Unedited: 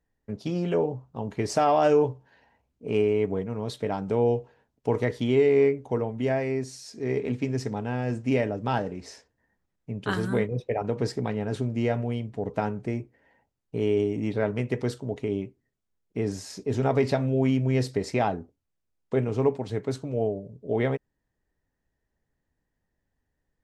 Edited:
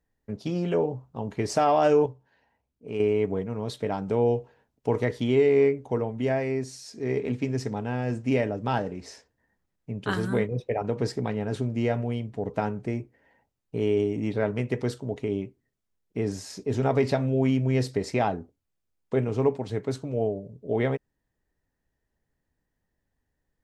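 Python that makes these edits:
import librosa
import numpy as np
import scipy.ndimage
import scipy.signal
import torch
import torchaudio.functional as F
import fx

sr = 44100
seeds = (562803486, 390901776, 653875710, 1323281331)

y = fx.edit(x, sr, fx.clip_gain(start_s=2.06, length_s=0.94, db=-6.5), tone=tone)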